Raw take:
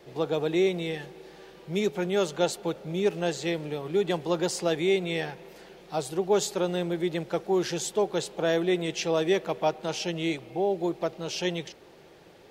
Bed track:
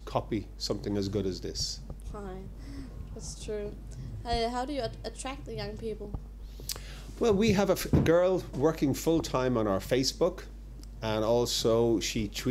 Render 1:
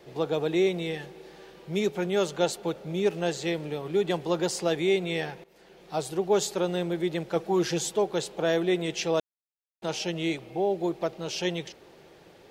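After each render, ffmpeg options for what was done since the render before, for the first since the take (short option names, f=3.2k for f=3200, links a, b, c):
-filter_complex "[0:a]asettb=1/sr,asplit=3[a][b][c];[a]atrim=end=7.354[d];[b]atrim=start=7.35:end=7.97,asetpts=PTS-STARTPTS,afade=t=in:d=0.004:c=qsin,afade=t=out:st=0.616:d=0.004:c=qsin,aecho=1:1:6.2:0.57,atrim=end_sample=27342[e];[c]atrim=start=7.966[f];[d][e]acrossfade=d=0.004:c1=hsin:c2=qsin[g];[g][f]acrossfade=d=0.004:c1=qsin:c2=hsin,asplit=4[h][i][j][k];[h]atrim=end=5.44,asetpts=PTS-STARTPTS,afade=t=out:st=5.436:d=0.004:c=hsin:silence=0.133352[l];[i]atrim=start=5.44:end=9.2,asetpts=PTS-STARTPTS,afade=t=in:d=0.52:silence=0.133352,afade=t=out:st=3.756:d=0.004:c=hsin[m];[j]atrim=start=9.2:end=9.82,asetpts=PTS-STARTPTS,volume=0[n];[k]atrim=start=9.82,asetpts=PTS-STARTPTS,afade=t=in:d=0.004:c=hsin[o];[l][m][n][o]concat=n=4:v=0:a=1"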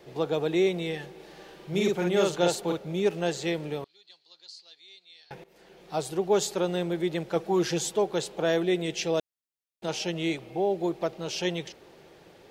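-filter_complex "[0:a]asettb=1/sr,asplit=3[a][b][c];[a]atrim=end=1.154[d];[b]atrim=start=1.15:end=2.78,asetpts=PTS-STARTPTS,afade=t=in:d=0.004:c=qsin,afade=t=out:st=1.626:d=0.004:c=qsin,asplit=2[e][f];[f]adelay=46,volume=-2dB[g];[e][g]amix=inputs=2:normalize=0,atrim=end_sample=71883[h];[c]atrim=start=2.776[i];[d][h]acrossfade=d=0.004:c1=hsin:c2=qsin[j];[j][i]acrossfade=d=0.004:c1=qsin:c2=hsin,asettb=1/sr,asplit=3[k][l][m];[k]atrim=end=3.844[n];[l]atrim=start=3.84:end=5.31,asetpts=PTS-STARTPTS,afade=t=in:d=0.004:c=qsin,afade=t=out:st=1.466:d=0.004:c=qsin,bandpass=f=4.3k:t=q:w=12[o];[m]atrim=start=5.306[p];[n][o]acrossfade=d=0.004:c1=hsin:c2=qsin[q];[q][p]acrossfade=d=0.004:c1=qsin:c2=hsin,asettb=1/sr,asplit=3[r][s][t];[r]atrim=end=8.644[u];[s]atrim=start=8.64:end=9.88,asetpts=PTS-STARTPTS,afade=t=in:d=0.004:c=qsin,afade=t=out:st=1.236:d=0.004:c=qsin,equalizer=f=1.1k:w=1.5:g=-5[v];[t]atrim=start=9.876[w];[u][v]acrossfade=d=0.004:c1=hsin:c2=qsin[x];[x][w]acrossfade=d=0.004:c1=qsin:c2=hsin"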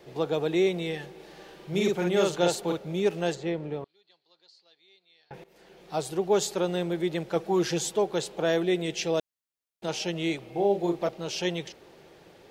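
-filter_complex "[0:a]asplit=3[a][b][c];[a]afade=t=out:st=3.34:d=0.02[d];[b]lowpass=f=1.2k:p=1,afade=t=in:st=3.34:d=0.02,afade=t=out:st=5.33:d=0.02[e];[c]afade=t=in:st=5.33:d=0.02[f];[d][e][f]amix=inputs=3:normalize=0,asettb=1/sr,asplit=3[g][h][i];[g]atrim=end=10.524[j];[h]atrim=start=10.52:end=11.09,asetpts=PTS-STARTPTS,afade=t=in:d=0.004:c=qsin,afade=t=out:st=0.566:d=0.004:c=qsin,asplit=2[k][l];[l]adelay=35,volume=-5dB[m];[k][m]amix=inputs=2:normalize=0,atrim=end_sample=25137[n];[i]atrim=start=11.086[o];[j][n]acrossfade=d=0.004:c1=hsin:c2=qsin[p];[p][o]acrossfade=d=0.004:c1=qsin:c2=hsin"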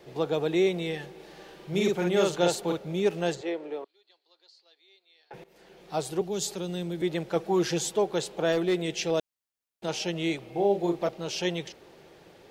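-filter_complex "[0:a]asettb=1/sr,asplit=3[a][b][c];[a]atrim=end=3.414[d];[b]atrim=start=3.41:end=5.34,asetpts=PTS-STARTPTS,afade=t=in:d=0.004:c=qsin,afade=t=out:st=1.926:d=0.004:c=qsin,highpass=f=310:w=0.5412,highpass=f=310:w=1.3066[e];[c]atrim=start=5.336[f];[d][e]acrossfade=d=0.004:c1=hsin:c2=qsin[g];[g][f]acrossfade=d=0.004:c1=qsin:c2=hsin,asettb=1/sr,asplit=3[h][i][j];[h]atrim=end=6.214[k];[i]atrim=start=6.21:end=7.02,asetpts=PTS-STARTPTS,afade=t=in:d=0.004:c=qsin,afade=t=out:st=0.806:d=0.004:c=qsin,acrossover=split=300|3000[l][m][n];[m]acompressor=threshold=-42dB:ratio=3:attack=3.2:release=140:knee=2.83:detection=peak[o];[l][o][n]amix=inputs=3:normalize=0[p];[j]atrim=start=7.016[q];[k][p]acrossfade=d=0.004:c1=hsin:c2=qsin[r];[r][q]acrossfade=d=0.004:c1=qsin:c2=hsin,asettb=1/sr,asplit=3[s][t][u];[s]atrim=end=8.524[v];[t]atrim=start=8.52:end=9.11,asetpts=PTS-STARTPTS,afade=t=in:d=0.004:c=qsin,afade=t=out:st=0.586:d=0.004:c=qsin,volume=20dB,asoftclip=hard,volume=-20dB[w];[u]atrim=start=9.106[x];[v][w]acrossfade=d=0.004:c1=hsin:c2=qsin[y];[y][x]acrossfade=d=0.004:c1=qsin:c2=hsin"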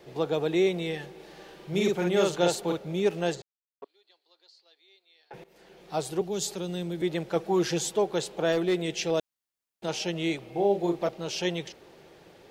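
-filter_complex "[0:a]asplit=3[a][b][c];[a]atrim=end=3.42,asetpts=PTS-STARTPTS,afade=t=out:st=3.416:d=0.004:c=hsin[d];[b]atrim=start=3.42:end=3.82,asetpts=PTS-STARTPTS,volume=0[e];[c]atrim=start=3.82,asetpts=PTS-STARTPTS,afade=t=in:d=0.004:c=hsin[f];[d][e][f]concat=n=3:v=0:a=1"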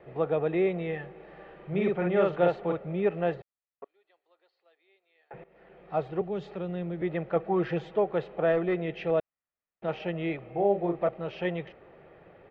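-af "lowpass=f=2.3k:w=0.5412,lowpass=f=2.3k:w=1.3066,aecho=1:1:1.6:0.31"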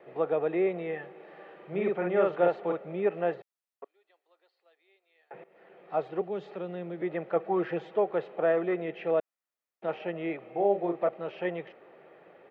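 -filter_complex "[0:a]highpass=260,acrossover=split=2700[a][b];[b]acompressor=threshold=-59dB:ratio=4:attack=1:release=60[c];[a][c]amix=inputs=2:normalize=0"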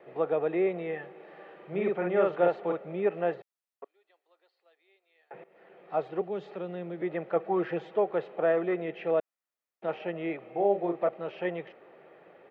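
-af anull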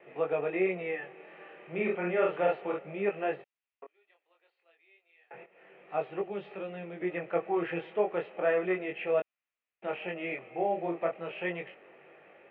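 -af "lowpass=f=2.6k:t=q:w=3.3,flanger=delay=20:depth=4:speed=0.32"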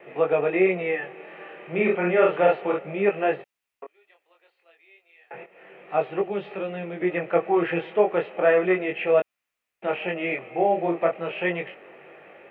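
-af "volume=8.5dB"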